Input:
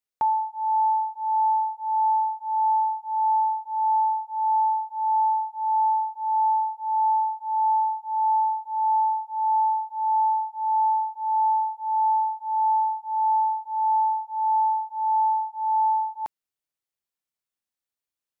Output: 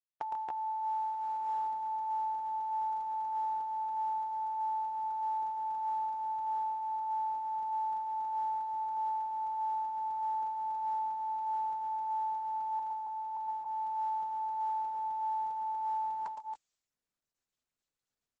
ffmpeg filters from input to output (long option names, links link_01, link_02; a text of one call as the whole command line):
ffmpeg -i in.wav -filter_complex "[0:a]aemphasis=mode=production:type=bsi,acompressor=threshold=-32dB:ratio=12,asettb=1/sr,asplit=3[link_01][link_02][link_03];[link_01]atrim=end=12.794[link_04];[link_02]atrim=start=12.79:end=13.37,asetpts=PTS-STARTPTS,afade=type=in:duration=0.004:curve=qsin,afade=type=out:start_time=0.576:duration=0.004:curve=qsin,highpass=frequency=880:width=0.5412,highpass=frequency=880:width=1.3066[link_05];[link_03]atrim=start=13.366[link_06];[link_04][link_05]acrossfade=duration=0.004:curve1=hsin:curve2=qsin[link_07];[link_07][link_06]acrossfade=duration=0.004:curve1=qsin:curve2=hsin,aecho=1:1:113|141|276|291:0.596|0.251|0.668|0.447,agate=range=-33dB:threshold=-59dB:ratio=3:detection=peak,aresample=22050,aresample=44100,volume=-5dB" -ar 48000 -c:a libopus -b:a 10k out.opus